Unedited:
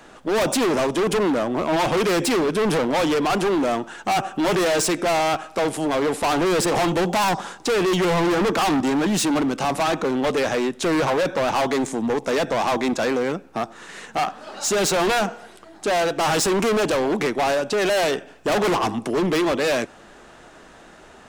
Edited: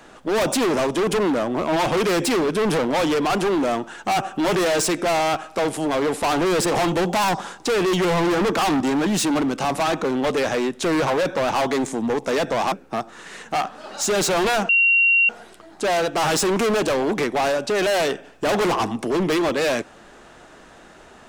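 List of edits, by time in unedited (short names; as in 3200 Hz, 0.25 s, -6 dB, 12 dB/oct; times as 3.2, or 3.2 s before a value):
12.72–13.35 cut
15.32 add tone 2750 Hz -13 dBFS 0.60 s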